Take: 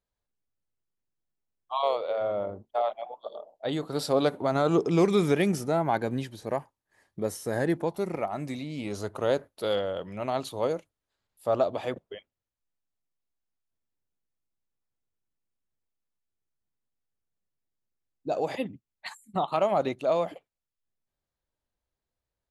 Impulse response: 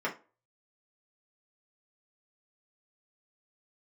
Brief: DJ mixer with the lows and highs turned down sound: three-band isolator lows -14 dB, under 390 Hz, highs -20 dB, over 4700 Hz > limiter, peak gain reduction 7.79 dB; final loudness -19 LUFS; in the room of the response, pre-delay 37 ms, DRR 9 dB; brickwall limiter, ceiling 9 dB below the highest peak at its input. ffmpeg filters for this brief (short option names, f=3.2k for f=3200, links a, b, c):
-filter_complex "[0:a]alimiter=limit=-21dB:level=0:latency=1,asplit=2[a][b];[1:a]atrim=start_sample=2205,adelay=37[c];[b][c]afir=irnorm=-1:irlink=0,volume=-17dB[d];[a][d]amix=inputs=2:normalize=0,acrossover=split=390 4700:gain=0.2 1 0.1[e][f][g];[e][f][g]amix=inputs=3:normalize=0,volume=18.5dB,alimiter=limit=-8dB:level=0:latency=1"